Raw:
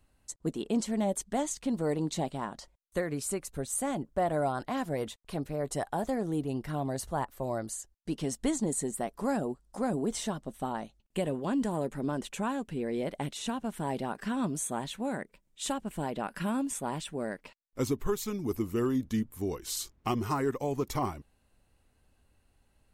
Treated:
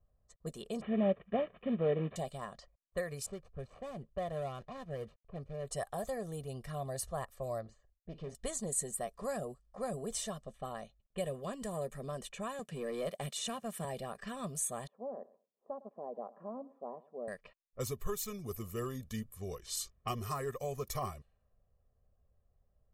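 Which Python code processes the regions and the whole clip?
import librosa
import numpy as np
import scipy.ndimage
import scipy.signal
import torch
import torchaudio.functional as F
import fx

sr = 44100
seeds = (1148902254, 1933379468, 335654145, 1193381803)

y = fx.chain(x, sr, fx.cvsd(bps=16000),
    fx.highpass(hz=84.0, slope=6),
    fx.peak_eq(hz=270.0, db=12.0, octaves=1.9), at=(0.81, 2.16))
y = fx.chain(y, sr, fx.median_filter(points=25),
    fx.lowpass(hz=3000.0, slope=6),
    fx.dynamic_eq(hz=690.0, q=1.7, threshold_db=-44.0, ratio=4.0, max_db=-5), at=(3.26, 5.67))
y = fx.chain(y, sr, fx.spacing_loss(db_at_10k=33),
    fx.doubler(ms=48.0, db=-13.0),
    fx.doppler_dist(depth_ms=0.28), at=(7.61, 8.35))
y = fx.chain(y, sr, fx.highpass(hz=130.0, slope=24),
    fx.leveller(passes=1), at=(12.59, 13.85))
y = fx.chain(y, sr, fx.cheby1_bandpass(low_hz=240.0, high_hz=930.0, order=3),
    fx.echo_feedback(ms=107, feedback_pct=21, wet_db=-19.5), at=(14.87, 17.28))
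y = fx.env_lowpass(y, sr, base_hz=800.0, full_db=-30.0)
y = fx.high_shelf(y, sr, hz=7200.0, db=10.0)
y = y + 0.84 * np.pad(y, (int(1.7 * sr / 1000.0), 0))[:len(y)]
y = F.gain(torch.from_numpy(y), -8.5).numpy()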